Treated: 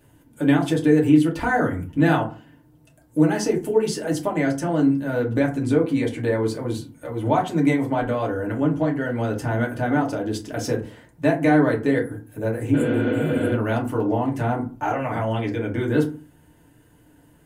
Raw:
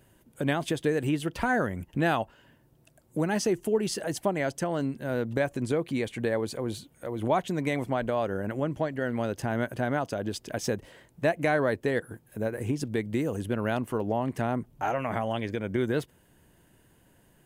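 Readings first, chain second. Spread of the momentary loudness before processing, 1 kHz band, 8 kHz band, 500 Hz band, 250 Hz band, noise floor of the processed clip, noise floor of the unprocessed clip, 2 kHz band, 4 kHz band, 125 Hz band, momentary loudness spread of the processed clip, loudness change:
6 LU, +5.5 dB, +2.5 dB, +5.5 dB, +10.0 dB, -55 dBFS, -62 dBFS, +4.5 dB, +2.5 dB, +8.0 dB, 9 LU, +7.5 dB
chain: spectral replace 12.77–13.48 s, 220–6900 Hz after; FDN reverb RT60 0.35 s, low-frequency decay 1.45×, high-frequency decay 0.5×, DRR -2.5 dB

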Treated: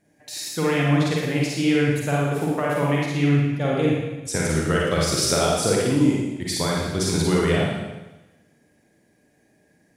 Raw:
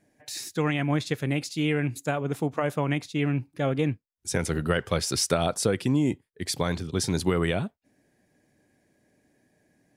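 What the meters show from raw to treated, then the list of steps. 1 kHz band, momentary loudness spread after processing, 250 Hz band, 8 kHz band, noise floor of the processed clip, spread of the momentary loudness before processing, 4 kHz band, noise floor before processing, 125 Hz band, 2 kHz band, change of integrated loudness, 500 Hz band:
+5.5 dB, 7 LU, +6.0 dB, +5.5 dB, -62 dBFS, 6 LU, +5.5 dB, -75 dBFS, +5.5 dB, +5.5 dB, +5.5 dB, +5.5 dB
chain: Schroeder reverb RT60 1.1 s, DRR -4 dB

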